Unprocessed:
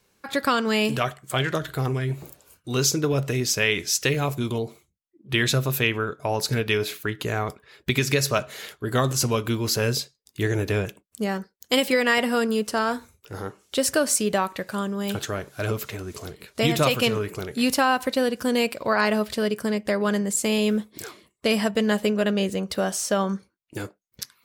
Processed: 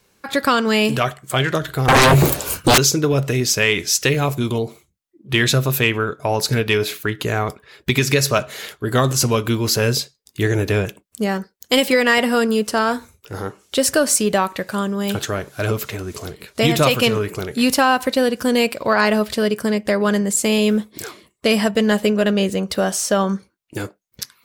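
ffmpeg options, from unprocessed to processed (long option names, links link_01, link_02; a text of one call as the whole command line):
ffmpeg -i in.wav -filter_complex "[0:a]asettb=1/sr,asplit=3[link_01][link_02][link_03];[link_01]atrim=end=1.884[link_04];[link_02]atrim=start=1.88:end=2.78,asetpts=PTS-STARTPTS,afade=type=in:duration=0.004:curve=qsin,afade=type=out:start_time=0.896:duration=0.004:curve=qsin,aeval=exprs='0.224*sin(PI/2*10*val(0)/0.224)':channel_layout=same[link_05];[link_03]atrim=start=2.776[link_06];[link_04][link_05]acrossfade=duration=0.004:curve1=hsin:curve2=qsin[link_07];[link_07][link_06]acrossfade=duration=0.004:curve1=qsin:curve2=hsin,acontrast=45" out.wav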